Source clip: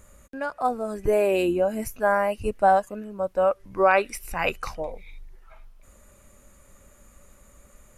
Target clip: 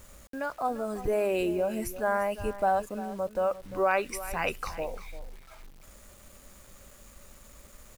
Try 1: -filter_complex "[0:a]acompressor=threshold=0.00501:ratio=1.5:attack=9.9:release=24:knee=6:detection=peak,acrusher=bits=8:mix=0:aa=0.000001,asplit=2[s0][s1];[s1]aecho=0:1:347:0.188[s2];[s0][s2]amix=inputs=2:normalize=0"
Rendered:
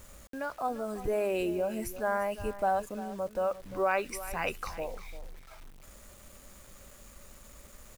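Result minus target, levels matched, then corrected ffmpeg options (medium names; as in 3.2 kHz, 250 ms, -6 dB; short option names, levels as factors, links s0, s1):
compression: peak gain reduction +2.5 dB
-filter_complex "[0:a]acompressor=threshold=0.0126:ratio=1.5:attack=9.9:release=24:knee=6:detection=peak,acrusher=bits=8:mix=0:aa=0.000001,asplit=2[s0][s1];[s1]aecho=0:1:347:0.188[s2];[s0][s2]amix=inputs=2:normalize=0"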